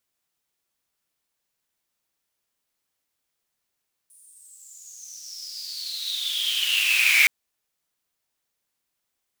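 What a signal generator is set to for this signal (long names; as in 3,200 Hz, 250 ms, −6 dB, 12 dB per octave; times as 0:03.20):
filter sweep on noise pink, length 3.17 s highpass, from 9,700 Hz, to 2,200 Hz, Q 12, exponential, gain ramp +36 dB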